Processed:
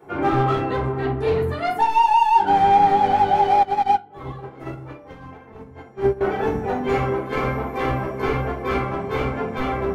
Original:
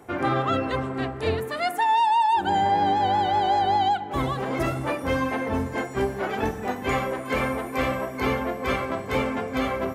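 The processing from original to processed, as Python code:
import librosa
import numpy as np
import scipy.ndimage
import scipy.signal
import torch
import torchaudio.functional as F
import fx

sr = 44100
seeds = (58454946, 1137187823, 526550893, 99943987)

y = scipy.signal.sosfilt(scipy.signal.butter(2, 60.0, 'highpass', fs=sr, output='sos'), x)
y = fx.peak_eq(y, sr, hz=10000.0, db=-11.0, octaves=2.7)
y = np.clip(y, -10.0 ** (-20.0 / 20.0), 10.0 ** (-20.0 / 20.0))
y = fx.room_shoebox(y, sr, seeds[0], volume_m3=190.0, walls='furnished', distance_m=4.4)
y = fx.upward_expand(y, sr, threshold_db=-20.0, expansion=2.5, at=(3.63, 6.21))
y = y * 10.0 ** (-5.0 / 20.0)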